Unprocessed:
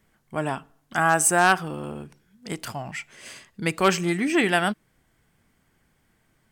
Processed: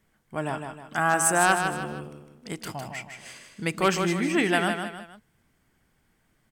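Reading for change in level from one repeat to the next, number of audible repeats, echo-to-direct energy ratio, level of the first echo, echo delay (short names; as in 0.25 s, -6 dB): -7.5 dB, 3, -5.5 dB, -6.5 dB, 0.156 s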